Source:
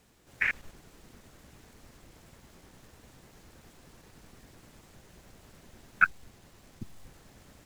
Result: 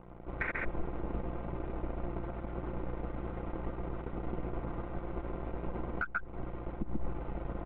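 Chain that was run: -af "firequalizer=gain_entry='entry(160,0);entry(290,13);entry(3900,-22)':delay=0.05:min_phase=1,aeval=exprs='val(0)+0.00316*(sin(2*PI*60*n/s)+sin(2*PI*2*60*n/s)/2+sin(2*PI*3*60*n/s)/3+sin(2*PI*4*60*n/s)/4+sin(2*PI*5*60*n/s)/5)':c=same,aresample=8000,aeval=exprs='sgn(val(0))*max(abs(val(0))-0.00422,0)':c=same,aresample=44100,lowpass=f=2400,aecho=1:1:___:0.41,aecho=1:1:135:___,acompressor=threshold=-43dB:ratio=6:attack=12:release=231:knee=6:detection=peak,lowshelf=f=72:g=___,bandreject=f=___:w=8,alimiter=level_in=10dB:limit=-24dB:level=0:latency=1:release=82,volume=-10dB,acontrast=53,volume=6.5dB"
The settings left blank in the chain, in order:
5.8, 0.531, 11, 1700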